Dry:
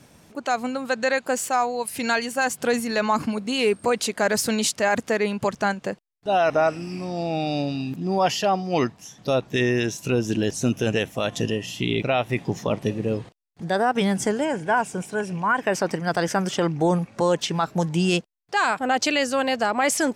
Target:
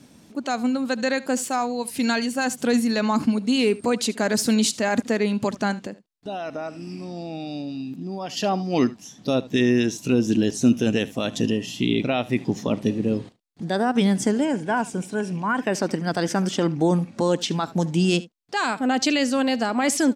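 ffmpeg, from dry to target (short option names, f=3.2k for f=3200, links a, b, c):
-filter_complex "[0:a]equalizer=f=250:t=o:w=1:g=11,equalizer=f=4k:t=o:w=1:g=5,equalizer=f=8k:t=o:w=1:g=3,aecho=1:1:74:0.106,asettb=1/sr,asplit=3[a][b][c];[a]atrim=end=5.864[d];[b]atrim=start=5.86:end=8.37,asetpts=PTS-STARTPTS,afade=t=in:d=0.004:c=qsin,afade=t=out:st=2.506:d=0.004:c=qsin,acompressor=threshold=-29dB:ratio=2.5[e];[c]atrim=start=8.366[f];[d][e]acrossfade=d=0.004:c1=hsin:c2=qsin[g];[g][f]acrossfade=d=0.004:c1=qsin:c2=hsin,volume=-4dB"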